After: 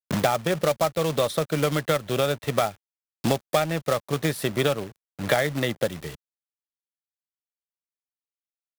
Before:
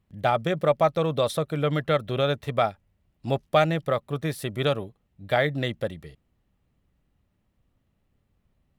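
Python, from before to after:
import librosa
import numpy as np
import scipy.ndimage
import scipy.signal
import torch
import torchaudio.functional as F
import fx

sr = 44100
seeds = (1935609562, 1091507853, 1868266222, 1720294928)

y = fx.low_shelf(x, sr, hz=84.0, db=-9.0)
y = fx.quant_companded(y, sr, bits=4)
y = fx.band_squash(y, sr, depth_pct=100)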